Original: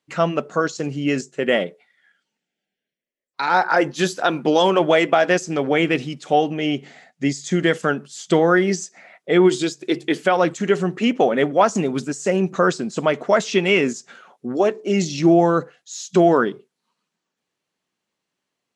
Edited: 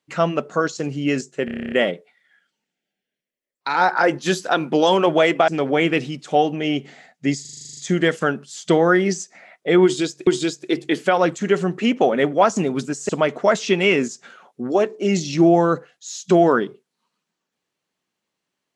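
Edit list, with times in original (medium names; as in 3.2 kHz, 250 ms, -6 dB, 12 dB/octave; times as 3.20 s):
1.45 s: stutter 0.03 s, 10 plays
5.21–5.46 s: delete
7.39 s: stutter 0.04 s, 10 plays
9.46–9.89 s: loop, 2 plays
12.28–12.94 s: delete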